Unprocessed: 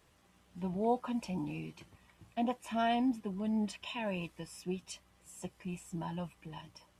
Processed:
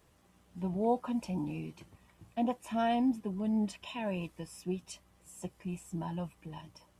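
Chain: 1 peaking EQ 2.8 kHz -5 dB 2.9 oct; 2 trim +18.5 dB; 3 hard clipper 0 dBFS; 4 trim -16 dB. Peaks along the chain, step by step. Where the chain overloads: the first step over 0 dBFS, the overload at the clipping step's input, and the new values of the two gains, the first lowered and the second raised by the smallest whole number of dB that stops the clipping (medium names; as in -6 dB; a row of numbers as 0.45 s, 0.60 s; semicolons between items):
-21.5 dBFS, -3.0 dBFS, -3.0 dBFS, -19.0 dBFS; nothing clips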